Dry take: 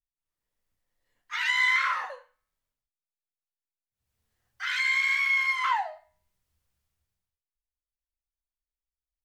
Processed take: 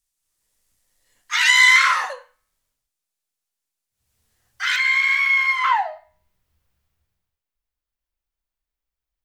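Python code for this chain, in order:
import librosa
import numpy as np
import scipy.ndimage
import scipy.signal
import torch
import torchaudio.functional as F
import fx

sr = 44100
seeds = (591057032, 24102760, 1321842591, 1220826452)

y = fx.peak_eq(x, sr, hz=8500.0, db=fx.steps((0.0, 13.5), (2.13, 6.0), (4.76, -6.0)), octaves=2.0)
y = y * 10.0 ** (8.0 / 20.0)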